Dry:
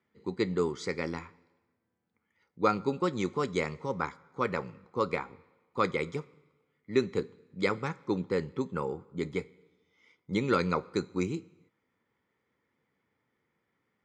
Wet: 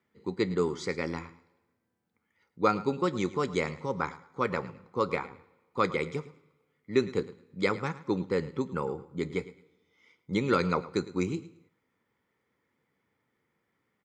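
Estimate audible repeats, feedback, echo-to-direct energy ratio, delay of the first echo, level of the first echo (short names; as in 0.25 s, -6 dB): 2, 23%, -17.0 dB, 0.108 s, -17.0 dB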